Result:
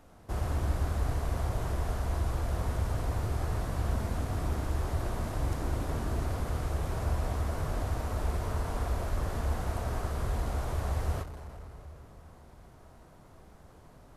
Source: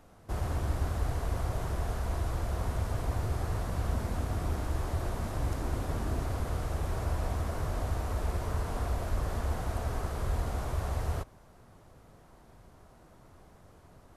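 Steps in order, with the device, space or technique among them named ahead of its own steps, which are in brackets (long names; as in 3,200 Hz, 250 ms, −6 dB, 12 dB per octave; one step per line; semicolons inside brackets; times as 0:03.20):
saturated reverb return (on a send at −4.5 dB: convolution reverb RT60 3.0 s, pre-delay 13 ms + soft clipping −34 dBFS, distortion −8 dB)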